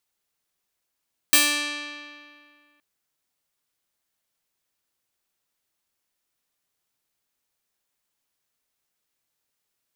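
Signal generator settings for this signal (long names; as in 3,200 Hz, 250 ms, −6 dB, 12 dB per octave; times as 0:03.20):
Karplus-Strong string D4, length 1.47 s, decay 2.14 s, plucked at 0.41, bright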